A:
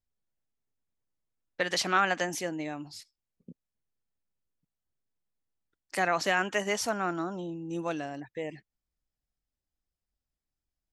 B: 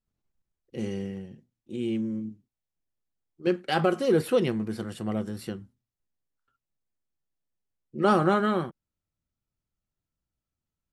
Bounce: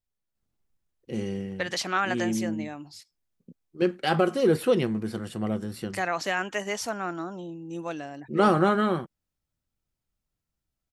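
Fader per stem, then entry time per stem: -1.0 dB, +1.0 dB; 0.00 s, 0.35 s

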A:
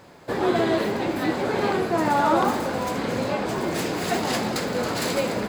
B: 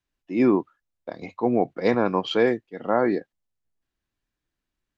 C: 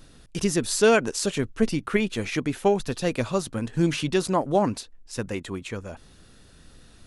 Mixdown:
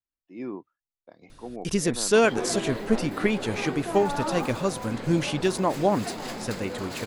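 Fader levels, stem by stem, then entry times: -10.0 dB, -16.0 dB, -1.0 dB; 1.95 s, 0.00 s, 1.30 s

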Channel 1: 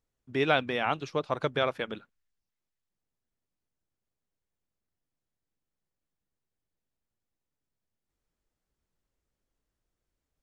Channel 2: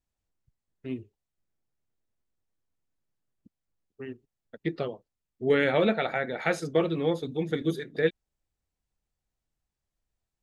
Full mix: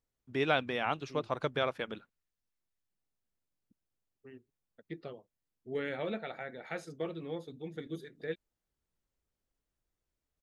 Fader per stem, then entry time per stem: -4.0 dB, -13.0 dB; 0.00 s, 0.25 s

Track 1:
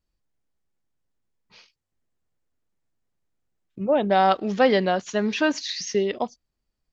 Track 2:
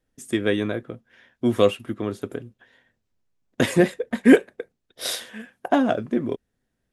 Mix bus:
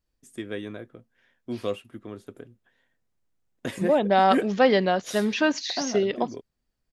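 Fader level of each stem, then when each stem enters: -0.5 dB, -11.5 dB; 0.00 s, 0.05 s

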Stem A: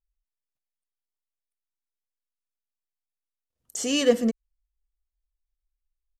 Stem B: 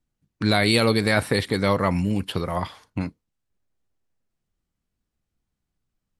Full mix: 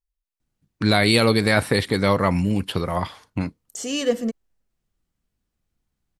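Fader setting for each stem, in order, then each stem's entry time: -1.5 dB, +2.0 dB; 0.00 s, 0.40 s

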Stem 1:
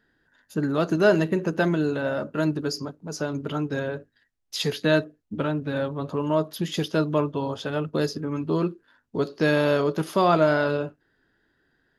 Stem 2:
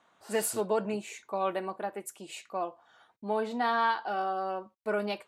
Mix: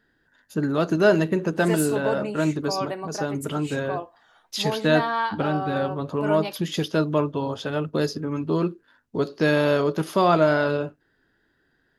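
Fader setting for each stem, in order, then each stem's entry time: +1.0 dB, +2.0 dB; 0.00 s, 1.35 s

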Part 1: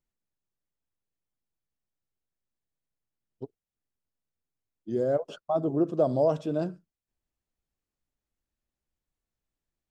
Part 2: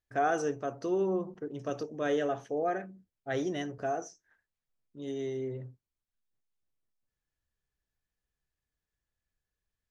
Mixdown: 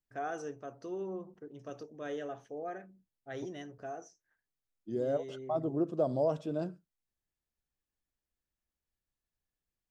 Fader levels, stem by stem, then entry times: -6.0 dB, -9.5 dB; 0.00 s, 0.00 s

